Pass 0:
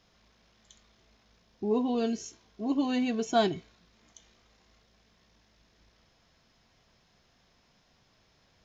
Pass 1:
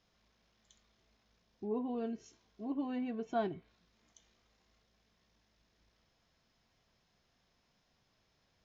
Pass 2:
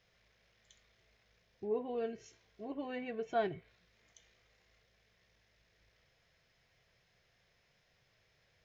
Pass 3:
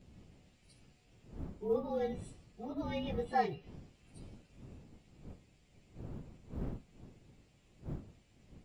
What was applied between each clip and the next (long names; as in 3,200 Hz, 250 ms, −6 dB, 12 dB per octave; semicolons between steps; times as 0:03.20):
treble cut that deepens with the level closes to 1,900 Hz, closed at −27 dBFS; level −9 dB
octave-band graphic EQ 125/250/500/1,000/2,000 Hz +6/−10/+7/−5/+9 dB
partials spread apart or drawn together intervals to 111%; wind on the microphone 200 Hz −53 dBFS; floating-point word with a short mantissa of 6 bits; level +4 dB